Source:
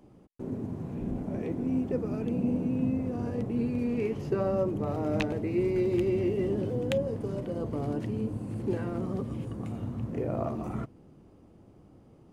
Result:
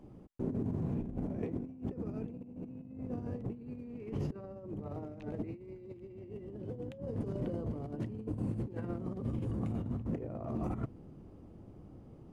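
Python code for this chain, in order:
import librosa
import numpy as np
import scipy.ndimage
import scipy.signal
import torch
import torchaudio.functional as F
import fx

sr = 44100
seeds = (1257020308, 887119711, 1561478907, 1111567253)

y = fx.tilt_eq(x, sr, slope=-1.5)
y = fx.over_compress(y, sr, threshold_db=-32.0, ratio=-0.5)
y = y * 10.0 ** (-6.0 / 20.0)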